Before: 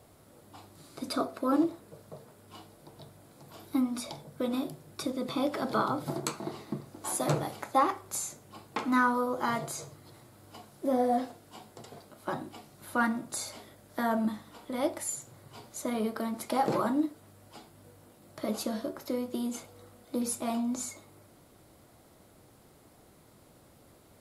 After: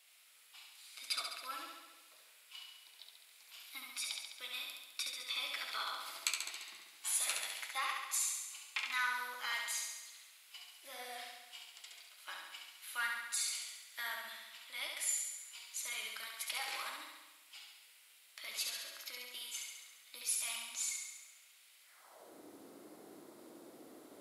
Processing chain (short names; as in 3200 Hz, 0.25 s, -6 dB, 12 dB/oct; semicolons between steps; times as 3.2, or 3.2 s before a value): high-pass sweep 2500 Hz -> 310 Hz, 21.83–22.35; flutter echo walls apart 11.8 m, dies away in 1.1 s; gain -2 dB